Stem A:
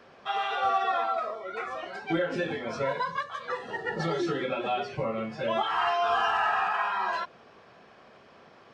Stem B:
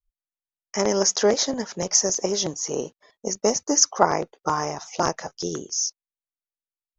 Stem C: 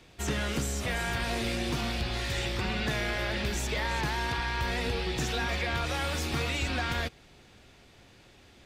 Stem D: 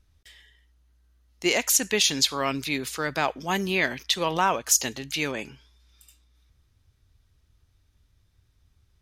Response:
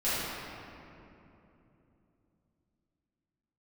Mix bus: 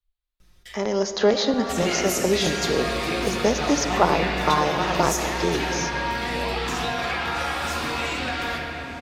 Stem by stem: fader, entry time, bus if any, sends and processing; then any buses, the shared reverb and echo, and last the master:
-8.5 dB, 0.95 s, no send, dry
0.68 s -12.5 dB -> 1.37 s 0 dB, 0.00 s, send -20 dB, harmonic-percussive split harmonic +5 dB; resonant high shelf 4800 Hz -6 dB, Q 3
+2.0 dB, 1.50 s, send -7.5 dB, low shelf 220 Hz -10 dB; compressor, threshold -35 dBFS, peak gain reduction 7 dB
-2.5 dB, 0.40 s, send -17.5 dB, comb 5.6 ms, depth 92%; auto duck -10 dB, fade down 1.70 s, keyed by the second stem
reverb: on, RT60 3.0 s, pre-delay 4 ms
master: three-band squash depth 40%

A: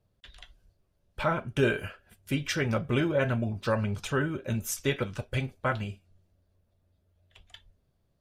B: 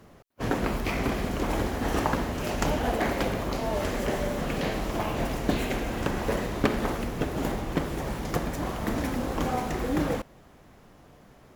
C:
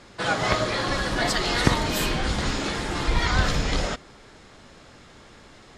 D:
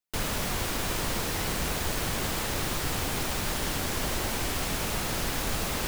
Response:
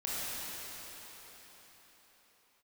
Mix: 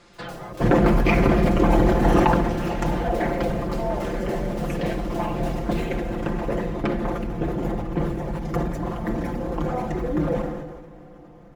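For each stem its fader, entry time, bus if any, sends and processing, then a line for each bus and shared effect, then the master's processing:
-18.5 dB, 0.00 s, no send, dry
2.15 s -2 dB -> 2.72 s -10 dB, 0.20 s, send -18 dB, formant sharpening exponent 1.5; sine folder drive 7 dB, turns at -7.5 dBFS
-5.5 dB, 0.00 s, no send, treble ducked by the level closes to 380 Hz, closed at -17.5 dBFS; compressor, threshold -30 dBFS, peak gain reduction 16.5 dB
-13.5 dB, 0.00 s, send -6.5 dB, high shelf 9900 Hz -6.5 dB; dB-ramp tremolo decaying 3.5 Hz, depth 31 dB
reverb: on, pre-delay 21 ms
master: comb 5.8 ms; sustainer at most 39 dB/s

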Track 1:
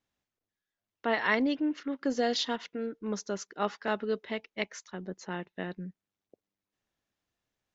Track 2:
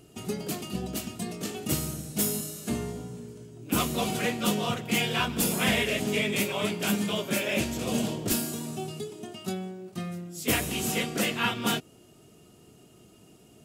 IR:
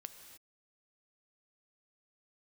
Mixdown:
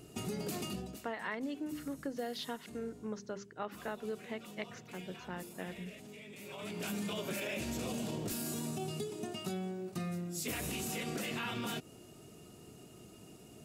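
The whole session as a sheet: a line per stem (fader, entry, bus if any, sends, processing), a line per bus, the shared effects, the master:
-5.0 dB, 0.00 s, no send, LPF 2900 Hz 6 dB/oct; notches 50/100/150/200/250/300/350/400 Hz
+0.5 dB, 0.00 s, no send, notch 3200 Hz, Q 17; limiter -26 dBFS, peak gain reduction 11.5 dB; auto duck -17 dB, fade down 0.35 s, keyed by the first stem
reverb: off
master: compressor 5:1, threshold -35 dBFS, peak gain reduction 8 dB

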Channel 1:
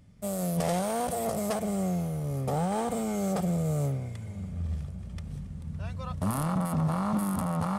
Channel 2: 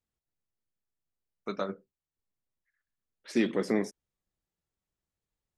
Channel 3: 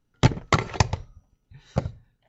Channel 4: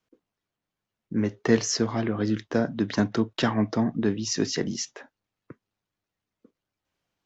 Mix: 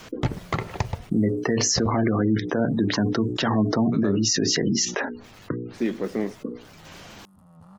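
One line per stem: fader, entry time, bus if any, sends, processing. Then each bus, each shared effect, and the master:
-18.5 dB, 0.00 s, no send, low shelf 190 Hz +8.5 dB; notch 2200 Hz, Q 8.2; auto duck -13 dB, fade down 1.70 s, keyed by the fourth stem
+1.5 dB, 2.45 s, no send, high shelf 2300 Hz -10 dB
-1.5 dB, 0.00 s, no send, high shelf 4600 Hz -11.5 dB
-1.5 dB, 0.00 s, no send, notches 60/120/180/240/300/360/420/480 Hz; spectral gate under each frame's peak -25 dB strong; fast leveller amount 70%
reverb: off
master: limiter -12 dBFS, peak gain reduction 6.5 dB

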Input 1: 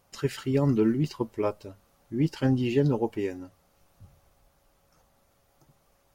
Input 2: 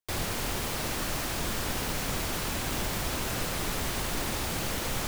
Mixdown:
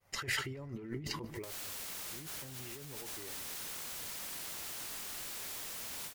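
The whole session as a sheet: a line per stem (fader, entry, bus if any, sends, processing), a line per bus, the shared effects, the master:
-7.0 dB, 0.00 s, no send, echo send -24 dB, expander -60 dBFS; thirty-one-band EQ 100 Hz +6 dB, 250 Hz -8 dB, 2000 Hz +11 dB; hard clip -18 dBFS, distortion -21 dB
+3.0 dB, 1.35 s, no send, no echo send, HPF 590 Hz 12 dB/oct; limiter -29 dBFS, peak gain reduction 7.5 dB; sine folder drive 19 dB, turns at -29 dBFS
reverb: off
echo: feedback echo 0.148 s, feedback 52%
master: negative-ratio compressor -43 dBFS, ratio -1; ending taper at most 150 dB/s

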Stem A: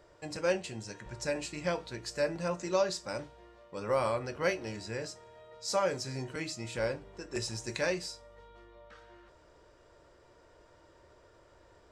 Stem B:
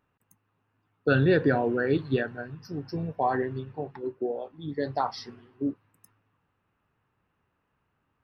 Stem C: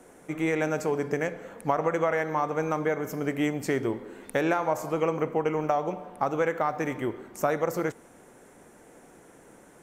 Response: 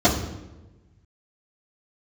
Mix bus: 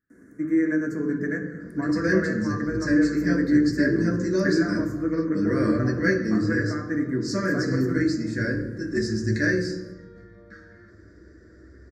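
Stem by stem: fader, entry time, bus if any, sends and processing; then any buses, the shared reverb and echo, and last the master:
0.0 dB, 1.60 s, send -14.5 dB, high shelf 6500 Hz -4.5 dB
-11.0 dB, 0.00 s, no send, compressor, threshold -35 dBFS, peak gain reduction 16 dB
-10.0 dB, 0.10 s, send -17 dB, graphic EQ 125/1000/4000 Hz +6/+8/-6 dB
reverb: on, RT60 1.1 s, pre-delay 3 ms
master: EQ curve 100 Hz 0 dB, 290 Hz +4 dB, 500 Hz -5 dB, 800 Hz -29 dB, 1700 Hz +12 dB, 3000 Hz -24 dB, 4600 Hz +2 dB, 8500 Hz -4 dB

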